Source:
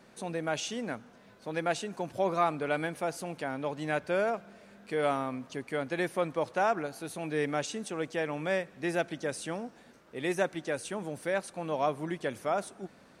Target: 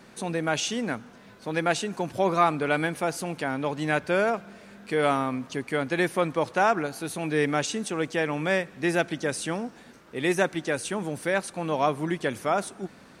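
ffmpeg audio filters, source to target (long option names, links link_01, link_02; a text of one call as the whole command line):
ffmpeg -i in.wav -af "equalizer=frequency=600:width_type=o:width=0.77:gain=-4,volume=7.5dB" out.wav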